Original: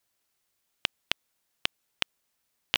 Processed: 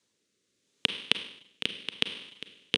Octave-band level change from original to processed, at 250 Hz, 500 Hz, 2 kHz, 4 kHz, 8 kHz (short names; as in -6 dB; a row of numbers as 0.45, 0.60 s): +7.5, +4.5, +0.5, +3.0, -2.0 dB